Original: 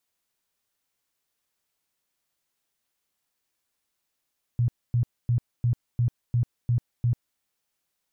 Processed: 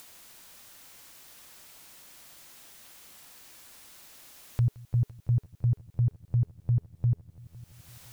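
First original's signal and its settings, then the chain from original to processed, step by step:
tone bursts 120 Hz, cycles 11, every 0.35 s, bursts 8, -19 dBFS
notch 420 Hz, Q 12; upward compressor, threshold -29 dBFS; multi-head echo 0.169 s, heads all three, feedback 65%, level -23 dB

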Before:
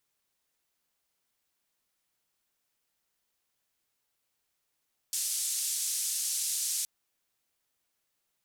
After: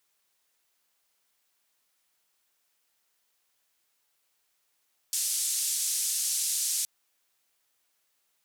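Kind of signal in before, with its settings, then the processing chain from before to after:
noise band 6500–9000 Hz, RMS -32 dBFS 1.72 s
low shelf 310 Hz -10.5 dB; in parallel at 0 dB: limiter -31 dBFS

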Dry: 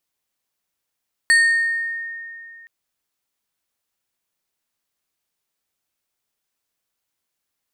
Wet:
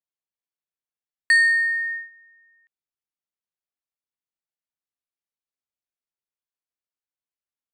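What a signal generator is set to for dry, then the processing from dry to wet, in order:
FM tone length 1.37 s, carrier 1840 Hz, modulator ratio 3.42, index 0.6, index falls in 1.24 s exponential, decay 2.55 s, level -9.5 dB
gate -29 dBFS, range -17 dB; high shelf 6000 Hz -10.5 dB

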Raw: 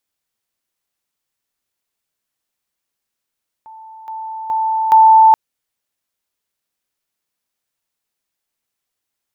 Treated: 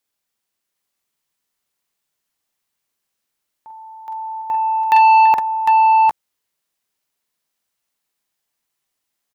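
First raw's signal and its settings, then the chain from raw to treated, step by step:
level ladder 884 Hz -34.5 dBFS, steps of 10 dB, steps 4, 0.42 s 0.00 s
low shelf 110 Hz -4.5 dB; tapped delay 43/48/55/754/755/769 ms -8/-9.5/-19/-13/-4/-13 dB; core saturation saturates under 1100 Hz

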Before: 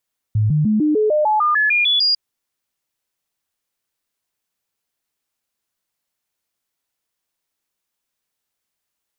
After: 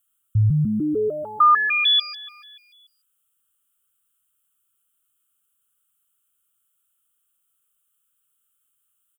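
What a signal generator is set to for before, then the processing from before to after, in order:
stepped sine 107 Hz up, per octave 2, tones 12, 0.15 s, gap 0.00 s -13 dBFS
EQ curve 120 Hz 0 dB, 230 Hz -7 dB, 440 Hz -5 dB, 840 Hz -21 dB, 1300 Hz +8 dB, 2000 Hz -13 dB, 3100 Hz +6 dB, 4700 Hz -21 dB, 8300 Hz +10 dB; feedback echo 0.29 s, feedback 39%, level -21 dB

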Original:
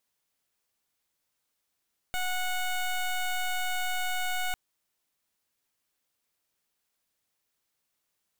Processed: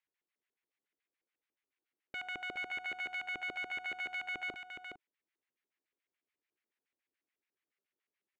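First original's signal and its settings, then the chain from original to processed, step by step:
pulse 734 Hz, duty 14% -29.5 dBFS 2.40 s
LPF 3500 Hz 6 dB/oct; LFO band-pass square 7 Hz 360–2100 Hz; on a send: echo 0.416 s -6 dB

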